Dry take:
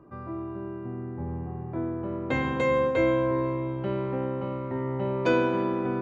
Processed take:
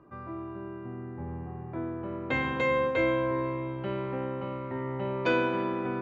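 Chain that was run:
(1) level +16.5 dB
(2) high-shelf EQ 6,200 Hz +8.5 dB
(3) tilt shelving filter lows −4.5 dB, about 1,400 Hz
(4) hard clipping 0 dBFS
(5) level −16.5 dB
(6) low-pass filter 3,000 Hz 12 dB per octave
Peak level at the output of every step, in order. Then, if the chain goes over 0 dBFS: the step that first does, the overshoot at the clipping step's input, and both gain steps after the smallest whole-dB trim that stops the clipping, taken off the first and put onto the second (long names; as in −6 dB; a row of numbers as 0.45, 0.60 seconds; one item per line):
+5.0, +5.5, +3.5, 0.0, −16.5, −16.0 dBFS
step 1, 3.5 dB
step 1 +12.5 dB, step 5 −12.5 dB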